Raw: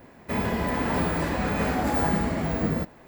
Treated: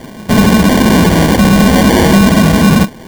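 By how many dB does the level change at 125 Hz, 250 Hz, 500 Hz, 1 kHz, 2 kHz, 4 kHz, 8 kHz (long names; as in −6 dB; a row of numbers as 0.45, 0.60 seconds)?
+18.5, +20.5, +16.0, +14.0, +16.5, +23.0, +24.0 decibels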